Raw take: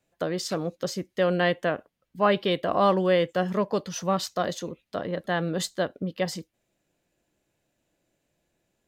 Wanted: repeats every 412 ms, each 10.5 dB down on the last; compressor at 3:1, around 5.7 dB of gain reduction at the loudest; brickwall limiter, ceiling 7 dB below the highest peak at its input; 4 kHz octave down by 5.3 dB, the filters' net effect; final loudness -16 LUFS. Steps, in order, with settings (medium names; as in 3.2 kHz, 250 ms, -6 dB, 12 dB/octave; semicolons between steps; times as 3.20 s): peaking EQ 4 kHz -7.5 dB; compression 3:1, threshold -24 dBFS; peak limiter -22 dBFS; feedback delay 412 ms, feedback 30%, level -10.5 dB; trim +17 dB